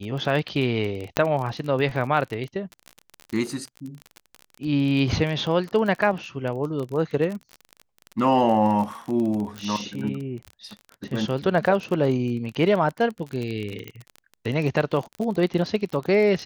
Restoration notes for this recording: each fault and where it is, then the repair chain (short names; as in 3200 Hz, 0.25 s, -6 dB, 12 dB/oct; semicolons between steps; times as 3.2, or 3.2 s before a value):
crackle 30/s -28 dBFS
1.17 pop -5 dBFS
9.58 pop
13.88 pop -20 dBFS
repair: de-click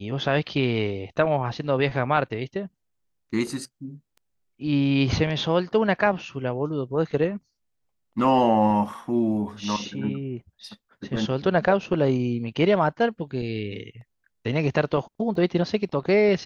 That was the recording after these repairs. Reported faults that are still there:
none